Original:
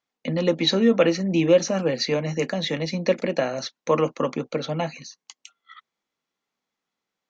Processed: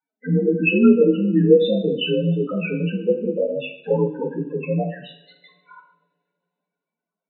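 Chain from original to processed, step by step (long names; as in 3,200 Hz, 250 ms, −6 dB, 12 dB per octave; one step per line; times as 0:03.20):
partials spread apart or drawn together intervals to 85%
spectral peaks only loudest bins 8
coupled-rooms reverb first 0.65 s, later 2.9 s, from −28 dB, DRR 4.5 dB
level +4.5 dB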